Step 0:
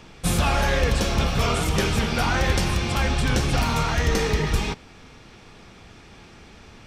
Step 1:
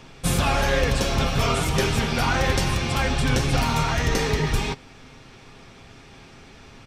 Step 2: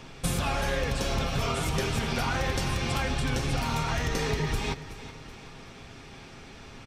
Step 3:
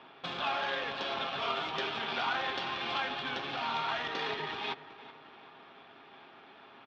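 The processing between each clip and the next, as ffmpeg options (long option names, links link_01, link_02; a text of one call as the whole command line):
ffmpeg -i in.wav -af "aecho=1:1:7.5:0.35" out.wav
ffmpeg -i in.wav -af "acompressor=threshold=-25dB:ratio=6,aecho=1:1:377|754|1131|1508:0.178|0.08|0.036|0.0162" out.wav
ffmpeg -i in.wav -af "adynamicsmooth=sensitivity=5.5:basefreq=1800,highpass=490,equalizer=frequency=500:width_type=q:width=4:gain=-8,equalizer=frequency=2100:width_type=q:width=4:gain=-4,equalizer=frequency=3400:width_type=q:width=4:gain=6,lowpass=frequency=4400:width=0.5412,lowpass=frequency=4400:width=1.3066" out.wav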